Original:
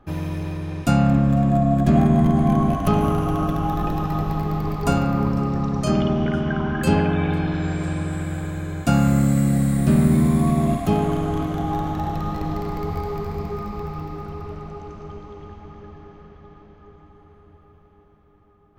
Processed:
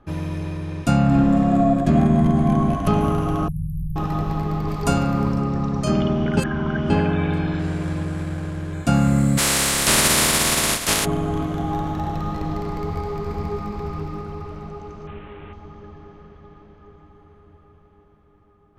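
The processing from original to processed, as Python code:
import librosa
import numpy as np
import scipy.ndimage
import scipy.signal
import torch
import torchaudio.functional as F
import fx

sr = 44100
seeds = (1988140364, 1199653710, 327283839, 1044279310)

y = fx.reverb_throw(x, sr, start_s=1.04, length_s=0.63, rt60_s=1.3, drr_db=-1.5)
y = fx.brickwall_bandstop(y, sr, low_hz=180.0, high_hz=9200.0, at=(3.48, 3.96))
y = fx.high_shelf(y, sr, hz=4000.0, db=6.0, at=(4.68, 5.36))
y = fx.running_max(y, sr, window=9, at=(7.59, 8.73))
y = fx.spec_flatten(y, sr, power=0.18, at=(9.37, 11.04), fade=0.02)
y = fx.echo_throw(y, sr, start_s=12.78, length_s=0.95, ms=480, feedback_pct=40, wet_db=-7.0)
y = fx.delta_mod(y, sr, bps=16000, step_db=-37.0, at=(15.07, 15.53))
y = fx.edit(y, sr, fx.reverse_span(start_s=6.37, length_s=0.53), tone=tone)
y = scipy.signal.sosfilt(scipy.signal.butter(4, 12000.0, 'lowpass', fs=sr, output='sos'), y)
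y = fx.notch(y, sr, hz=760.0, q=15.0)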